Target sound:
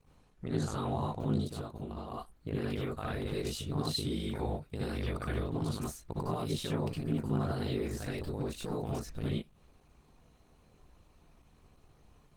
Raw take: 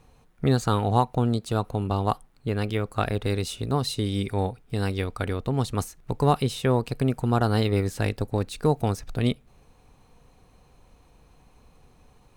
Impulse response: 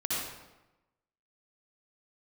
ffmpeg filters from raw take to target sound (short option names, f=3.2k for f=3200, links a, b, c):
-filter_complex "[0:a]asplit=3[a][b][c];[a]afade=t=out:st=1.47:d=0.02[d];[b]acompressor=threshold=-31dB:ratio=4,afade=t=in:st=1.47:d=0.02,afade=t=out:st=2.11:d=0.02[e];[c]afade=t=in:st=2.11:d=0.02[f];[d][e][f]amix=inputs=3:normalize=0,alimiter=limit=-17.5dB:level=0:latency=1:release=41,aeval=exprs='val(0)*sin(2*PI*26*n/s)':c=same[g];[1:a]atrim=start_sample=2205,afade=t=out:st=0.15:d=0.01,atrim=end_sample=7056[h];[g][h]afir=irnorm=-1:irlink=0,volume=-6dB" -ar 48000 -c:a libopus -b:a 16k